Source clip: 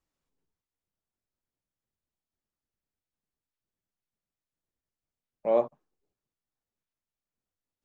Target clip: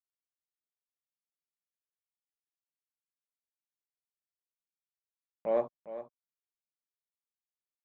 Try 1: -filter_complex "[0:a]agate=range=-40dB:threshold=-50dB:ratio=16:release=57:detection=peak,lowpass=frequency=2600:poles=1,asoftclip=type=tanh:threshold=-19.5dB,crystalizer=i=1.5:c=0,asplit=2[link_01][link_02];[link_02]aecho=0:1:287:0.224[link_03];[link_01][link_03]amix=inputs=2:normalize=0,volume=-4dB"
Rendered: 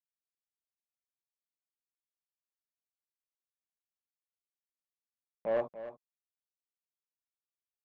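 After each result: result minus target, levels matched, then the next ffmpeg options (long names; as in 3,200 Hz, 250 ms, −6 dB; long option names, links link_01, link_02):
soft clipping: distortion +11 dB; echo 119 ms early
-filter_complex "[0:a]agate=range=-40dB:threshold=-50dB:ratio=16:release=57:detection=peak,lowpass=frequency=2600:poles=1,asoftclip=type=tanh:threshold=-12dB,crystalizer=i=1.5:c=0,asplit=2[link_01][link_02];[link_02]aecho=0:1:287:0.224[link_03];[link_01][link_03]amix=inputs=2:normalize=0,volume=-4dB"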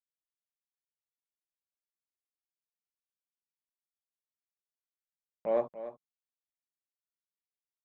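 echo 119 ms early
-filter_complex "[0:a]agate=range=-40dB:threshold=-50dB:ratio=16:release=57:detection=peak,lowpass=frequency=2600:poles=1,asoftclip=type=tanh:threshold=-12dB,crystalizer=i=1.5:c=0,asplit=2[link_01][link_02];[link_02]aecho=0:1:406:0.224[link_03];[link_01][link_03]amix=inputs=2:normalize=0,volume=-4dB"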